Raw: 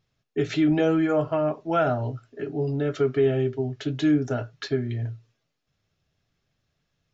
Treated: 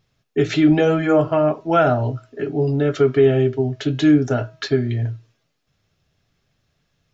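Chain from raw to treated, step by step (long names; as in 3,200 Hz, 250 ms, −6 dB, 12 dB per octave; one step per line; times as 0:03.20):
hum removal 321 Hz, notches 14
level +7 dB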